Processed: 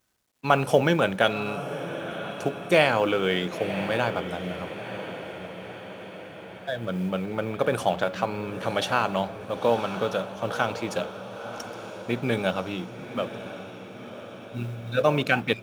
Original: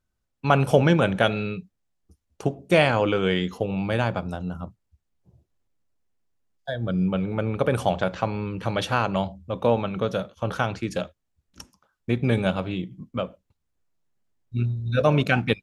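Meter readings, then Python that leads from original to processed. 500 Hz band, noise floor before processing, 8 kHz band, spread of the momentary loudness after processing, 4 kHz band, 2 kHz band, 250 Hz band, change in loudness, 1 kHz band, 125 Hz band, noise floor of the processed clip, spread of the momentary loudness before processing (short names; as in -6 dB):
-0.5 dB, -78 dBFS, +2.0 dB, 17 LU, +1.0 dB, +0.5 dB, -3.5 dB, -2.0 dB, +0.5 dB, -7.0 dB, -43 dBFS, 13 LU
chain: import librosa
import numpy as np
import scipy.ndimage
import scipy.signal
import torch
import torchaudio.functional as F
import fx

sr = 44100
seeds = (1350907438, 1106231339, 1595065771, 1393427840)

y = fx.law_mismatch(x, sr, coded='mu')
y = fx.highpass(y, sr, hz=320.0, slope=6)
y = fx.echo_diffused(y, sr, ms=1002, feedback_pct=60, wet_db=-11)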